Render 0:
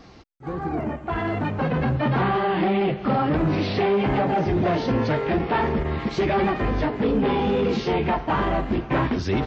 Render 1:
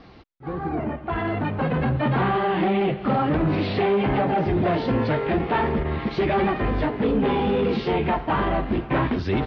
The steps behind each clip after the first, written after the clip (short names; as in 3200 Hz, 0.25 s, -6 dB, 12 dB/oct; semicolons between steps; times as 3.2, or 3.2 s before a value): LPF 4300 Hz 24 dB/oct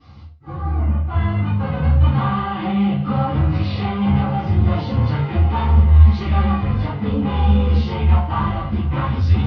notch 1800 Hz, Q 14; reverb RT60 0.35 s, pre-delay 3 ms, DRR -13 dB; gain -16.5 dB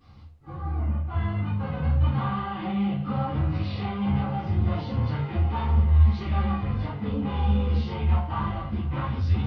added noise brown -54 dBFS; gain -8 dB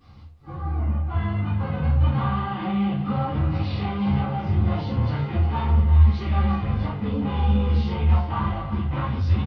echo 0.356 s -12 dB; gain +2.5 dB